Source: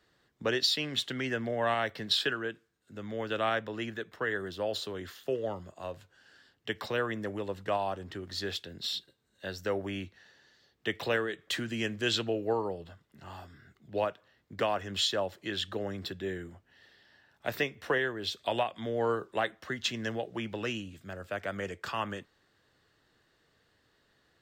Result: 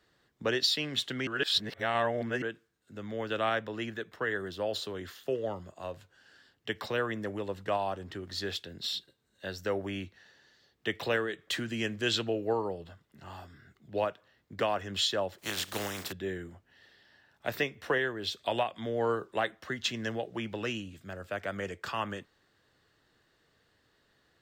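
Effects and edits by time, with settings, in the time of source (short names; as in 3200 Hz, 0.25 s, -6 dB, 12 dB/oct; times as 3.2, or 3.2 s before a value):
1.27–2.42 reverse
15.38–16.11 spectral contrast lowered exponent 0.39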